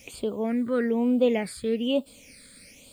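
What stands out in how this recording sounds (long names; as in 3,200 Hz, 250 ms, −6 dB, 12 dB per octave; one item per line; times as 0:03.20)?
a quantiser's noise floor 10 bits, dither triangular
phaser sweep stages 8, 1.1 Hz, lowest notch 800–1,900 Hz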